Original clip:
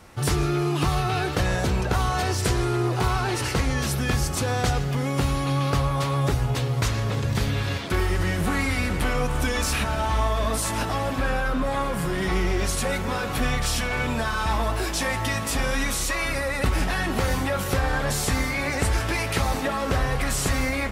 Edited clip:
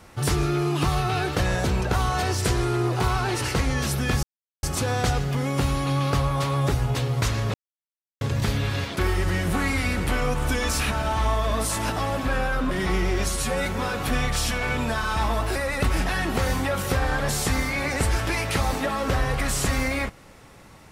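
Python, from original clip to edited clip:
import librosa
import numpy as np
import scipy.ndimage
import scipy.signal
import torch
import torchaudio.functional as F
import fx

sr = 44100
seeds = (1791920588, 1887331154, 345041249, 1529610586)

y = fx.edit(x, sr, fx.insert_silence(at_s=4.23, length_s=0.4),
    fx.insert_silence(at_s=7.14, length_s=0.67),
    fx.cut(start_s=11.64, length_s=0.49),
    fx.stretch_span(start_s=12.7, length_s=0.25, factor=1.5),
    fx.cut(start_s=14.85, length_s=1.52), tone=tone)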